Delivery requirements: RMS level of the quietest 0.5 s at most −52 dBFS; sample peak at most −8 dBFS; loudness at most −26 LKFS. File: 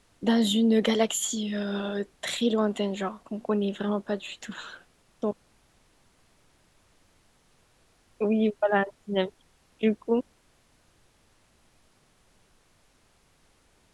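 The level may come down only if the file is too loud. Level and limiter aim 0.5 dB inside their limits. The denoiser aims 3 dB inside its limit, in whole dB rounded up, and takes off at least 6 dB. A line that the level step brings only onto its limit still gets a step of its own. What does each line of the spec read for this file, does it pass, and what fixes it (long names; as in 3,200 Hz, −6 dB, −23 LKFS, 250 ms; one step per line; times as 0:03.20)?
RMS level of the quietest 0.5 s −64 dBFS: in spec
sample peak −9.0 dBFS: in spec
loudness −27.5 LKFS: in spec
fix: no processing needed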